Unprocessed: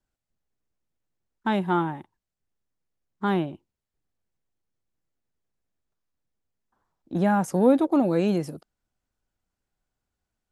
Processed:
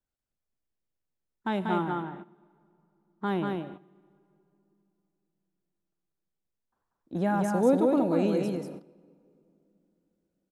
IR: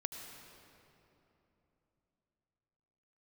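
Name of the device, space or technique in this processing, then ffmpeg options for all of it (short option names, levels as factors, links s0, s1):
keyed gated reverb: -filter_complex "[0:a]asettb=1/sr,asplit=3[s0][s1][s2];[s0]atrim=end=1.844[s3];[s1]atrim=start=1.84:end=3.24,asetpts=PTS-STARTPTS,afade=t=in:d=0.004:c=qsin,afade=t=out:st=1.396:d=0.004:c=qsin,lowpass=5300[s4];[s2]atrim=start=3.236[s5];[s3][s4]acrossfade=d=0.004:c1=hsin:c2=qsin[s6];[s6][s5]acrossfade=d=0.004:c1=qsin:c2=hsin,equalizer=f=490:w=2.3:g=2.5,aecho=1:1:189:0.668,asplit=3[s7][s8][s9];[1:a]atrim=start_sample=2205[s10];[s8][s10]afir=irnorm=-1:irlink=0[s11];[s9]apad=whole_len=471961[s12];[s11][s12]sidechaingate=range=0.2:threshold=0.00794:ratio=16:detection=peak,volume=0.596[s13];[s7][s13]amix=inputs=2:normalize=0,volume=0.355"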